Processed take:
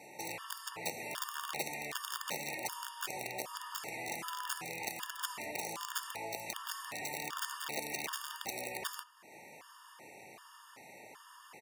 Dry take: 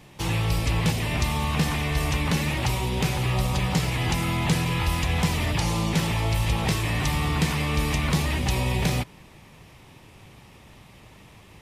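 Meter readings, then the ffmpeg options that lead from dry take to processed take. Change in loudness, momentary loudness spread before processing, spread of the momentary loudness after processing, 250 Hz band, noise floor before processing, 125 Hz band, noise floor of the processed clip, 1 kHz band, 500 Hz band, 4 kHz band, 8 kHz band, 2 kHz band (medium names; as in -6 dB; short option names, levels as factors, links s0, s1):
-15.0 dB, 2 LU, 16 LU, -24.5 dB, -50 dBFS, -35.0 dB, -57 dBFS, -11.0 dB, -13.0 dB, -12.5 dB, -7.5 dB, -11.5 dB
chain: -filter_complex "[0:a]acompressor=threshold=0.00562:ratio=2,equalizer=f=3400:t=o:w=0.57:g=-9.5,asplit=2[s0][s1];[s1]adelay=67,lowpass=f=2700:p=1,volume=0.237,asplit=2[s2][s3];[s3]adelay=67,lowpass=f=2700:p=1,volume=0.35,asplit=2[s4][s5];[s5]adelay=67,lowpass=f=2700:p=1,volume=0.35,asplit=2[s6][s7];[s7]adelay=67,lowpass=f=2700:p=1,volume=0.35[s8];[s0][s2][s4][s6][s8]amix=inputs=5:normalize=0,aeval=exprs='(mod(28.2*val(0)+1,2)-1)/28.2':c=same,highpass=480,afftfilt=real='re*gt(sin(2*PI*1.3*pts/sr)*(1-2*mod(floor(b*sr/1024/920),2)),0)':imag='im*gt(sin(2*PI*1.3*pts/sr)*(1-2*mod(floor(b*sr/1024/920),2)),0)':win_size=1024:overlap=0.75,volume=1.58"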